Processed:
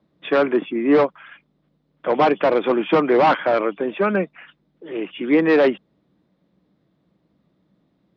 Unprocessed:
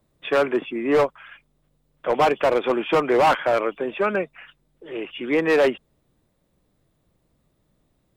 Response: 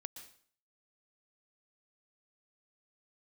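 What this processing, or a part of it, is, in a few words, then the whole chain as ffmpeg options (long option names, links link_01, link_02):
guitar cabinet: -af "highpass=95,equalizer=frequency=100:width_type=q:width=4:gain=-8,equalizer=frequency=190:width_type=q:width=4:gain=9,equalizer=frequency=300:width_type=q:width=4:gain=6,equalizer=frequency=2700:width_type=q:width=4:gain=-3,lowpass=frequency=4500:width=0.5412,lowpass=frequency=4500:width=1.3066,volume=1.5dB"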